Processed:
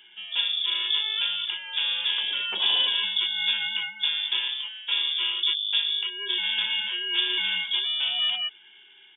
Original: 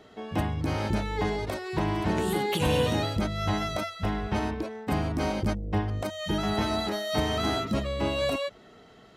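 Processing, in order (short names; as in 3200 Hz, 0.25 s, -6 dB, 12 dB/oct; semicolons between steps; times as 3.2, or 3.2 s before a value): comb 1.6 ms, depth 50%; inverted band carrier 3500 Hz; HPF 930 Hz 6 dB/oct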